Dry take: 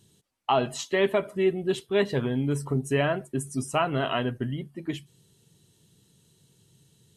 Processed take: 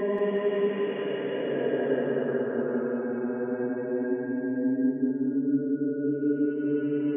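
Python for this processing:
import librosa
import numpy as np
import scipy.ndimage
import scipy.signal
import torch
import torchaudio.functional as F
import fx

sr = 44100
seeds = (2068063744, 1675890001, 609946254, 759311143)

y = fx.delta_mod(x, sr, bps=16000, step_db=-34.5)
y = fx.spec_gate(y, sr, threshold_db=-25, keep='strong')
y = scipy.signal.sosfilt(scipy.signal.butter(4, 230.0, 'highpass', fs=sr, output='sos'), y)
y = fx.paulstretch(y, sr, seeds[0], factor=13.0, window_s=0.25, from_s=2.02)
y = fx.echo_feedback(y, sr, ms=184, feedback_pct=49, wet_db=-4)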